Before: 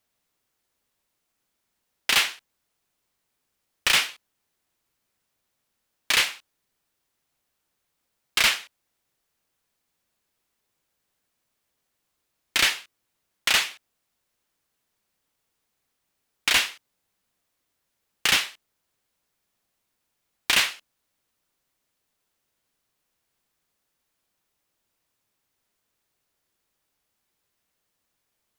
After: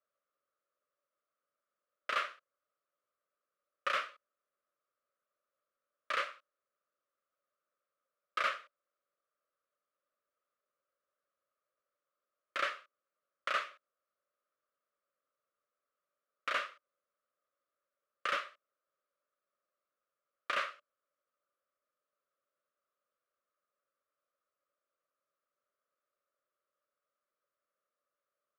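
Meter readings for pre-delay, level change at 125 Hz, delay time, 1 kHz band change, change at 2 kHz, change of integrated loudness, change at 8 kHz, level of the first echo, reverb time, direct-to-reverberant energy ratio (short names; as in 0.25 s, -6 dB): none, under -25 dB, none, -3.5 dB, -13.5 dB, -15.0 dB, -29.0 dB, none, none, none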